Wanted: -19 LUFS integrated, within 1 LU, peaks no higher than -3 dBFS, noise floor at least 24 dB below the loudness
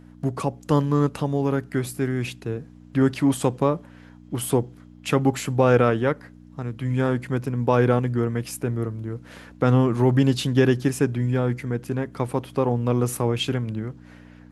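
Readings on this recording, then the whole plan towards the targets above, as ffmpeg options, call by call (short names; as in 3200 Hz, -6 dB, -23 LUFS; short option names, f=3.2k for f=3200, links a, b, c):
hum 60 Hz; harmonics up to 300 Hz; hum level -46 dBFS; loudness -23.5 LUFS; peak -5.5 dBFS; loudness target -19.0 LUFS
-> -af "bandreject=f=60:t=h:w=4,bandreject=f=120:t=h:w=4,bandreject=f=180:t=h:w=4,bandreject=f=240:t=h:w=4,bandreject=f=300:t=h:w=4"
-af "volume=4.5dB,alimiter=limit=-3dB:level=0:latency=1"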